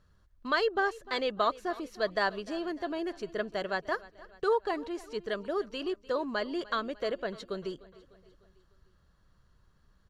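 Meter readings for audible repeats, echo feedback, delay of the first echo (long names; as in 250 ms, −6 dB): 3, 53%, 300 ms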